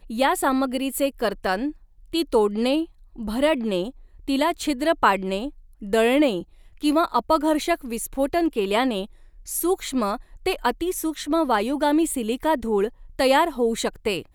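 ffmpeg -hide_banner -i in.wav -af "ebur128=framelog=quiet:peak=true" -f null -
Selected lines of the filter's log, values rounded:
Integrated loudness:
  I:         -23.2 LUFS
  Threshold: -33.5 LUFS
Loudness range:
  LRA:         2.5 LU
  Threshold: -43.6 LUFS
  LRA low:   -24.9 LUFS
  LRA high:  -22.4 LUFS
True peak:
  Peak:       -5.5 dBFS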